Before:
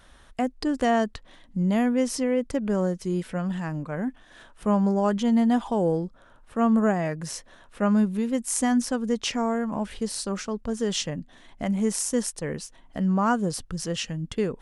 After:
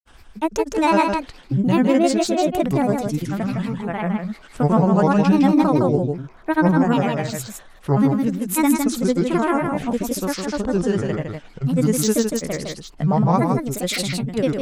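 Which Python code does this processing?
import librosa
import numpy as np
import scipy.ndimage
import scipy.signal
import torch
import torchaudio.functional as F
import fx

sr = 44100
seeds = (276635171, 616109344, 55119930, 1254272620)

y = fx.granulator(x, sr, seeds[0], grain_ms=100.0, per_s=20.0, spray_ms=100.0, spread_st=7)
y = y + 10.0 ** (-5.0 / 20.0) * np.pad(y, (int(159 * sr / 1000.0), 0))[:len(y)]
y = F.gain(torch.from_numpy(y), 6.0).numpy()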